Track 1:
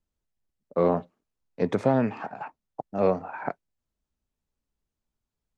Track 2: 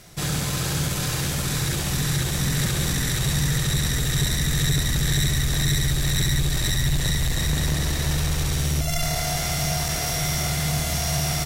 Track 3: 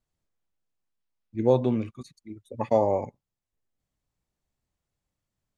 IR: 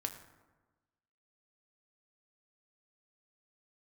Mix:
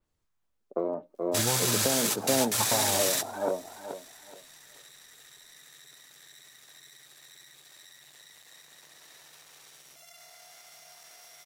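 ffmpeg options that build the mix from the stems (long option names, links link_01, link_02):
-filter_complex "[0:a]bandpass=frequency=470:width_type=q:width=1:csg=0,aphaser=in_gain=1:out_gain=1:delay=3.3:decay=0.52:speed=0.49:type=sinusoidal,volume=2dB,asplit=2[link_01][link_02];[link_02]volume=-9dB[link_03];[1:a]highpass=640,alimiter=limit=-20.5dB:level=0:latency=1:release=57,acrusher=bits=6:mix=0:aa=0.5,adelay=1150,volume=0dB[link_04];[2:a]equalizer=frequency=250:width_type=o:width=1:gain=-7,equalizer=frequency=500:width_type=o:width=1:gain=-12,equalizer=frequency=1000:width_type=o:width=1:gain=5,volume=3dB,asplit=3[link_05][link_06][link_07];[link_06]volume=-22.5dB[link_08];[link_07]apad=whole_len=555768[link_09];[link_04][link_09]sidechaingate=range=-22dB:threshold=-51dB:ratio=16:detection=peak[link_10];[link_01][link_05]amix=inputs=2:normalize=0,acompressor=threshold=-26dB:ratio=8,volume=0dB[link_11];[link_03][link_08]amix=inputs=2:normalize=0,aecho=0:1:427|854|1281|1708:1|0.25|0.0625|0.0156[link_12];[link_10][link_11][link_12]amix=inputs=3:normalize=0,adynamicequalizer=threshold=0.00501:dfrequency=4200:dqfactor=0.7:tfrequency=4200:tqfactor=0.7:attack=5:release=100:ratio=0.375:range=2.5:mode=boostabove:tftype=highshelf"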